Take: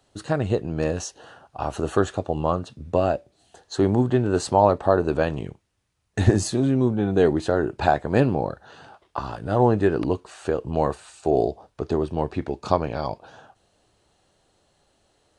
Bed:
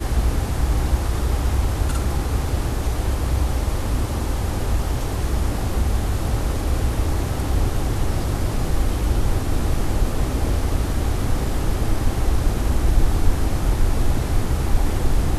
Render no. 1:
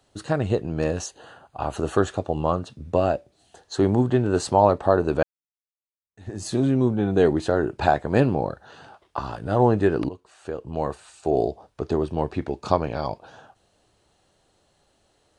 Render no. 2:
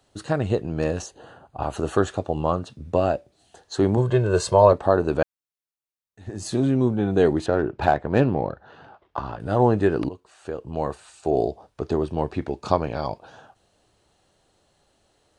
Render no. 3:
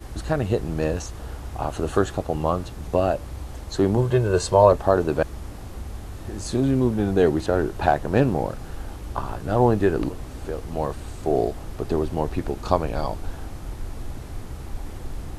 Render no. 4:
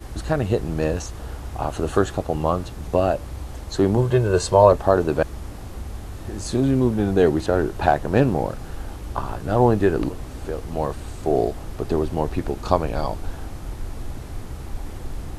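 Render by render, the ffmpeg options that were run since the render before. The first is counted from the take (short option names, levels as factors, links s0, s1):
-filter_complex "[0:a]asettb=1/sr,asplit=3[s0][s1][s2];[s0]atrim=end=1.064[s3];[s1]atrim=start=1.06:end=1.76,asetpts=PTS-STARTPTS,afade=t=in:d=0.004:c=qsin,afade=t=out:st=0.696:d=0.004:c=qsin,asuperstop=centerf=5500:order=4:qfactor=5.6[s4];[s2]atrim=start=1.756[s5];[s3][s4]acrossfade=d=0.004:c1=hsin:c2=qsin[s6];[s6][s5]acrossfade=d=0.004:c1=qsin:c2=hsin,asplit=3[s7][s8][s9];[s7]atrim=end=5.23,asetpts=PTS-STARTPTS,afade=t=out:st=5.226:d=0.004:c=hsin[s10];[s8]atrim=start=5.23:end=10.09,asetpts=PTS-STARTPTS,afade=t=in:d=1.3:c=exp,afade=t=out:st=4.856:d=0.004:c=hsin:silence=0.158489[s11];[s9]atrim=start=10.09,asetpts=PTS-STARTPTS,afade=t=in:d=2.02:c=qsin:silence=0.158489[s12];[s10][s11][s12]concat=n=3:v=0:a=1"
-filter_complex "[0:a]asettb=1/sr,asplit=3[s0][s1][s2];[s0]atrim=end=1.024[s3];[s1]atrim=start=1.02:end=1.63,asetpts=PTS-STARTPTS,afade=t=in:d=0.004:c=qsin,afade=t=out:st=0.606:d=0.004:c=qsin,tiltshelf=f=830:g=5[s4];[s2]atrim=start=1.626[s5];[s3][s4]acrossfade=d=0.004:c1=hsin:c2=qsin[s6];[s6][s5]acrossfade=d=0.004:c1=qsin:c2=hsin,asettb=1/sr,asplit=3[s7][s8][s9];[s7]atrim=end=3.974[s10];[s8]atrim=start=3.97:end=4.73,asetpts=PTS-STARTPTS,afade=t=in:d=0.004:c=qsin,afade=t=out:st=0.756:d=0.004:c=qsin,aecho=1:1:1.9:0.82,atrim=end_sample=33516[s11];[s9]atrim=start=4.726[s12];[s10][s11]acrossfade=d=0.004:c1=hsin:c2=qsin[s13];[s13][s12]acrossfade=d=0.004:c1=qsin:c2=hsin,asettb=1/sr,asplit=3[s14][s15][s16];[s14]atrim=end=7.464[s17];[s15]atrim=start=7.46:end=9.4,asetpts=PTS-STARTPTS,afade=t=in:d=0.004:c=qsin,afade=t=out:st=1.936:d=0.004:c=qsin,adynamicsmooth=sensitivity=2:basefreq=3000[s18];[s16]atrim=start=9.396[s19];[s17][s18]acrossfade=d=0.004:c1=hsin:c2=qsin[s20];[s20][s19]acrossfade=d=0.004:c1=qsin:c2=hsin"
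-filter_complex "[1:a]volume=0.2[s0];[0:a][s0]amix=inputs=2:normalize=0"
-af "volume=1.19"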